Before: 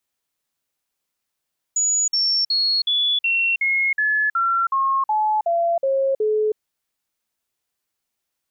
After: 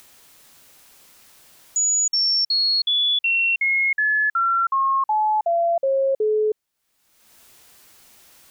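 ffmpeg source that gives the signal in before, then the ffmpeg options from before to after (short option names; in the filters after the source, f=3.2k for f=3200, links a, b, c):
-f lavfi -i "aevalsrc='0.15*clip(min(mod(t,0.37),0.32-mod(t,0.37))/0.005,0,1)*sin(2*PI*6860*pow(2,-floor(t/0.37)/3)*mod(t,0.37))':d=4.81:s=44100"
-af "acompressor=mode=upward:threshold=-28dB:ratio=2.5"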